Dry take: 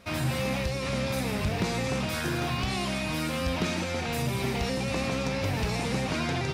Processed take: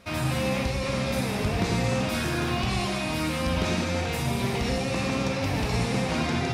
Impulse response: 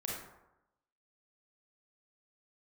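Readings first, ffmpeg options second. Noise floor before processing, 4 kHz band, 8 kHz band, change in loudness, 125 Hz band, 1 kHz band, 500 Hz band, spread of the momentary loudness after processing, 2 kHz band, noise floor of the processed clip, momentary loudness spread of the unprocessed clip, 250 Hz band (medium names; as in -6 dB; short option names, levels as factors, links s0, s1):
-31 dBFS, +1.5 dB, +2.0 dB, +2.5 dB, +2.5 dB, +2.5 dB, +2.5 dB, 2 LU, +1.5 dB, -29 dBFS, 1 LU, +3.0 dB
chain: -filter_complex "[0:a]asplit=2[s0][s1];[1:a]atrim=start_sample=2205,atrim=end_sample=6174,asetrate=25137,aresample=44100[s2];[s1][s2]afir=irnorm=-1:irlink=0,volume=0.841[s3];[s0][s3]amix=inputs=2:normalize=0,volume=0.596"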